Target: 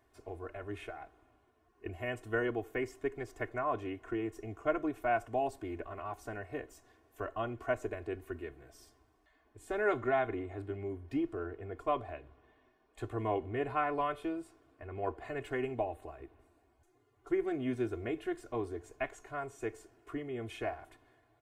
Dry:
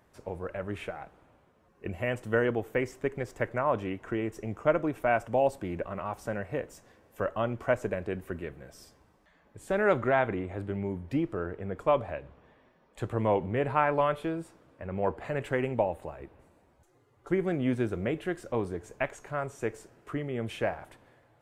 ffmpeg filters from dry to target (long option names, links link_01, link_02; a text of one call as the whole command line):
ffmpeg -i in.wav -af "aecho=1:1:2.8:0.94,volume=-8.5dB" out.wav